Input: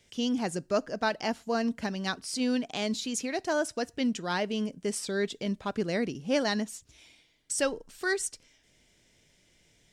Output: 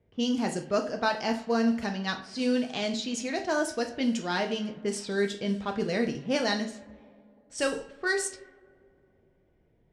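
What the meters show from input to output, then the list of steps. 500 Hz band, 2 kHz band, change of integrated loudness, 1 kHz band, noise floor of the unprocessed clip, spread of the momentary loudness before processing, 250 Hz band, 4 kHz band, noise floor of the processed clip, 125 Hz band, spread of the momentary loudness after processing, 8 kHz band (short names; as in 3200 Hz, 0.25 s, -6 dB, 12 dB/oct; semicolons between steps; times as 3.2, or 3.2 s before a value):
+1.5 dB, +2.0 dB, +1.5 dB, +2.0 dB, -66 dBFS, 4 LU, +1.5 dB, +1.5 dB, -66 dBFS, +1.0 dB, 5 LU, -2.0 dB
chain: two-slope reverb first 0.44 s, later 3.2 s, from -22 dB, DRR 3.5 dB; low-pass opened by the level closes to 790 Hz, open at -24 dBFS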